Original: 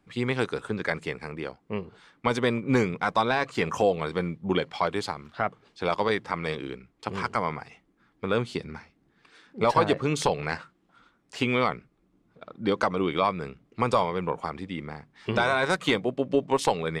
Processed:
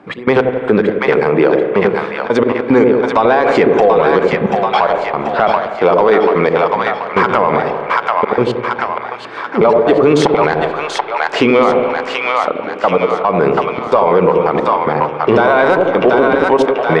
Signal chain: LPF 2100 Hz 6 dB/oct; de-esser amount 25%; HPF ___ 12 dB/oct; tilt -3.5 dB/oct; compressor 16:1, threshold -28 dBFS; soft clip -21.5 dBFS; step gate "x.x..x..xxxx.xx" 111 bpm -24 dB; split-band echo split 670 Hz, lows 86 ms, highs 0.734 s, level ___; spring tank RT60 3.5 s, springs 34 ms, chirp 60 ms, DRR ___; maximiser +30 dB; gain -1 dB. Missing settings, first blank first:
480 Hz, -5.5 dB, 13.5 dB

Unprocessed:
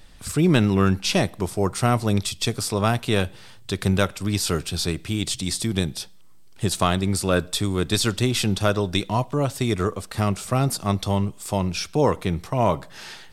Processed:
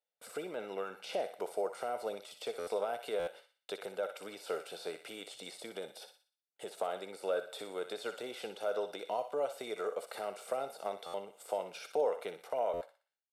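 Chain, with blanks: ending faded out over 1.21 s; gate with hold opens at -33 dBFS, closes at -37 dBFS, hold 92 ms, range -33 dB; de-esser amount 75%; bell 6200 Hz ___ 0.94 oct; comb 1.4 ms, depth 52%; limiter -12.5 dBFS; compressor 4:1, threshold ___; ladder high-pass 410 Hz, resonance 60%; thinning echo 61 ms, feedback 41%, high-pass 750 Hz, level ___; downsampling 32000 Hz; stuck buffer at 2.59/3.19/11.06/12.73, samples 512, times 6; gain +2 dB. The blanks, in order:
-6.5 dB, -25 dBFS, -8.5 dB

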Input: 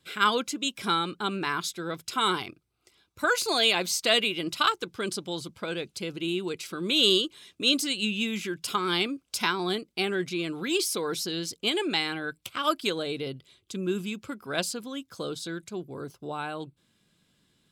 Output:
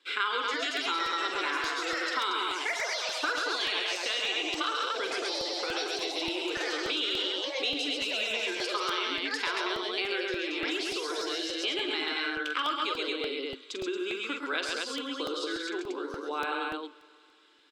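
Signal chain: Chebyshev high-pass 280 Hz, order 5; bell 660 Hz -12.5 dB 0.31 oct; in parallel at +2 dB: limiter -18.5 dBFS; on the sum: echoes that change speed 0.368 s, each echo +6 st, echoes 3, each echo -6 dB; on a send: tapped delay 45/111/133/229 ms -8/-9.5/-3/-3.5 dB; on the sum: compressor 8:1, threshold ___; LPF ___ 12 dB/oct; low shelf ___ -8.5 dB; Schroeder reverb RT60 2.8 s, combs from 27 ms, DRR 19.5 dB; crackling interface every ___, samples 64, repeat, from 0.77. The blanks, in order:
-25 dBFS, 4000 Hz, 480 Hz, 0.29 s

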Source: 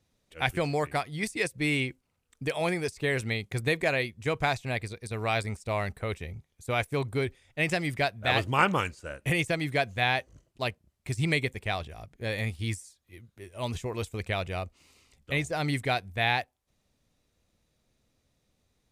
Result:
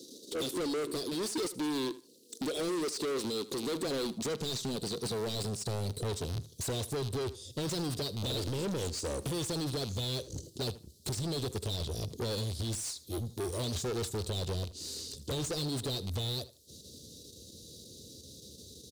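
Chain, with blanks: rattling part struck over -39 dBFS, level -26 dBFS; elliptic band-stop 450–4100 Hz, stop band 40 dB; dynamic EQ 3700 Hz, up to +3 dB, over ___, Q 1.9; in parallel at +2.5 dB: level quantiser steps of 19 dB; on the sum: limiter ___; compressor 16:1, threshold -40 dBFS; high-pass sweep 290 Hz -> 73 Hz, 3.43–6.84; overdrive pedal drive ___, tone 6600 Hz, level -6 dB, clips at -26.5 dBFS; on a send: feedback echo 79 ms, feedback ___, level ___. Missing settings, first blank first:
-52 dBFS, -21.5 dBFS, 32 dB, 21%, -17.5 dB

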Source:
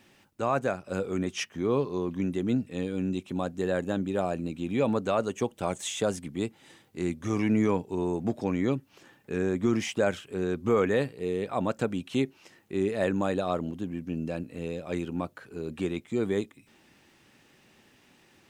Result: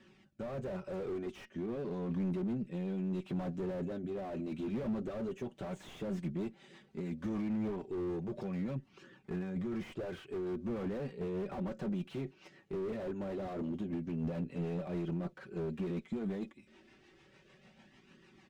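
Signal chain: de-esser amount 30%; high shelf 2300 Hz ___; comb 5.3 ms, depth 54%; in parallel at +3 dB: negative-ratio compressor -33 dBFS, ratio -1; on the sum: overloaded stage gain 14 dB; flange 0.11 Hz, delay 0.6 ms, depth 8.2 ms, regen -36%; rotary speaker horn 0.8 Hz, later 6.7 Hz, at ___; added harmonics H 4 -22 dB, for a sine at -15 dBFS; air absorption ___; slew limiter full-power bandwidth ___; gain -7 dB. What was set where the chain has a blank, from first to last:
-2 dB, 5.71, 88 m, 15 Hz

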